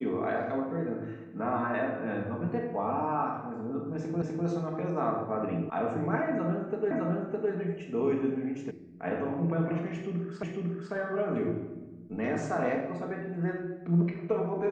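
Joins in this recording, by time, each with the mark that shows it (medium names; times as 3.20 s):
4.22 s: repeat of the last 0.25 s
5.70 s: sound stops dead
6.91 s: repeat of the last 0.61 s
8.71 s: sound stops dead
10.43 s: repeat of the last 0.5 s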